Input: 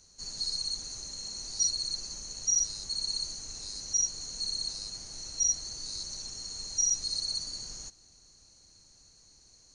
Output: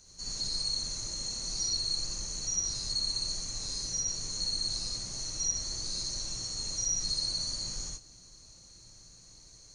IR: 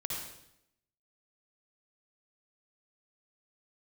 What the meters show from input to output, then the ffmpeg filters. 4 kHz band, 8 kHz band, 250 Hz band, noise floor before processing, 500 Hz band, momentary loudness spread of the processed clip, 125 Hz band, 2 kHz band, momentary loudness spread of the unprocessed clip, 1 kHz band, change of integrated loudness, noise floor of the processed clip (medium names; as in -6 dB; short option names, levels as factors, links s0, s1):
+1.0 dB, -2.5 dB, +6.0 dB, -60 dBFS, +5.0 dB, 5 LU, +8.0 dB, no reading, 12 LU, +4.0 dB, -0.5 dB, -55 dBFS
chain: -filter_complex "[0:a]acrossover=split=3700[s0][s1];[s1]acompressor=threshold=0.0141:ratio=4:attack=1:release=60[s2];[s0][s2]amix=inputs=2:normalize=0[s3];[1:a]atrim=start_sample=2205,atrim=end_sample=4410[s4];[s3][s4]afir=irnorm=-1:irlink=0,volume=1.58"